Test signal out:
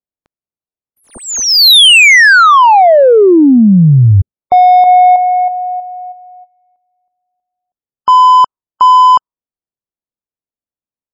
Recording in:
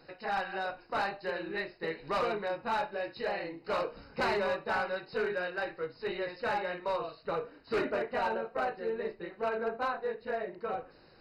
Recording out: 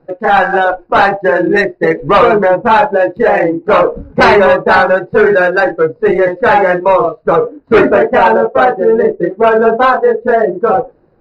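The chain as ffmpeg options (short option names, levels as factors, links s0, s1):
-af "adynamicsmooth=sensitivity=7.5:basefreq=760,afftdn=nr=19:nf=-43,alimiter=level_in=29.9:limit=0.891:release=50:level=0:latency=1,volume=0.891"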